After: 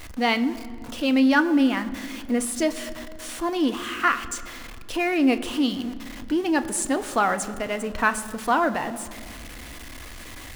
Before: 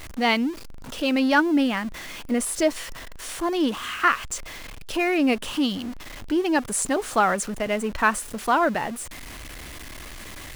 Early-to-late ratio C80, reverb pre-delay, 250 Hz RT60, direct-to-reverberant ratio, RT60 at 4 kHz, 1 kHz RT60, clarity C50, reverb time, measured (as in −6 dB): 15.0 dB, 3 ms, 2.9 s, 9.5 dB, 1.4 s, 2.0 s, 14.5 dB, 2.2 s